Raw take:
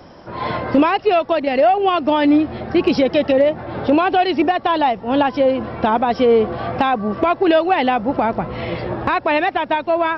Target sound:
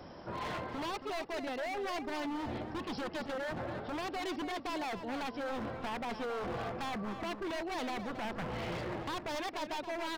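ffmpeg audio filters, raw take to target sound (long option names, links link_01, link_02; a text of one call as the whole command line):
ffmpeg -i in.wav -filter_complex "[0:a]areverse,acompressor=threshold=-24dB:ratio=6,areverse,aeval=exprs='0.0562*(abs(mod(val(0)/0.0562+3,4)-2)-1)':channel_layout=same,asplit=2[link_01][link_02];[link_02]adelay=274.1,volume=-9dB,highshelf=frequency=4000:gain=-6.17[link_03];[link_01][link_03]amix=inputs=2:normalize=0,volume=-8dB" out.wav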